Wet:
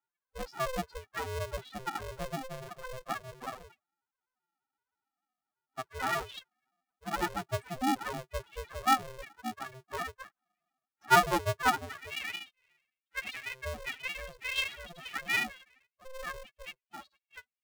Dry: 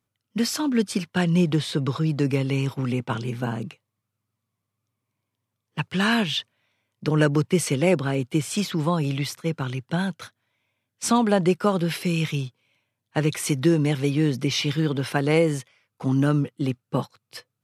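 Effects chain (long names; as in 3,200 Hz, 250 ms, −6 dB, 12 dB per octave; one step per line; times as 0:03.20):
band-pass filter sweep 1,100 Hz → 2,400 Hz, 0:11.73–0:12.43
spectral peaks only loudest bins 2
ring modulator with a square carrier 260 Hz
level +8 dB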